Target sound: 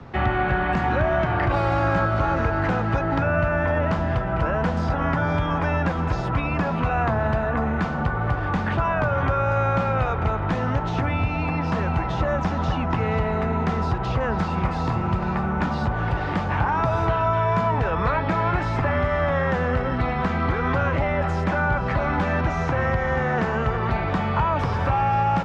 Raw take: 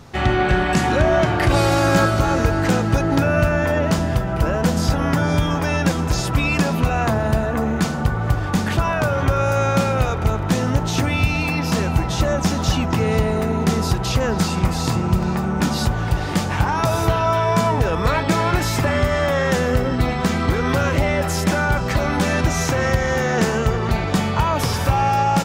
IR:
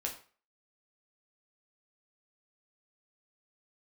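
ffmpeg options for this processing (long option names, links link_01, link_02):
-filter_complex "[0:a]acrossover=split=83|230|650|1400[link_01][link_02][link_03][link_04][link_05];[link_01]acompressor=threshold=-29dB:ratio=4[link_06];[link_02]acompressor=threshold=-30dB:ratio=4[link_07];[link_03]acompressor=threshold=-36dB:ratio=4[link_08];[link_04]acompressor=threshold=-25dB:ratio=4[link_09];[link_05]acompressor=threshold=-32dB:ratio=4[link_10];[link_06][link_07][link_08][link_09][link_10]amix=inputs=5:normalize=0,lowpass=2200,volume=2dB"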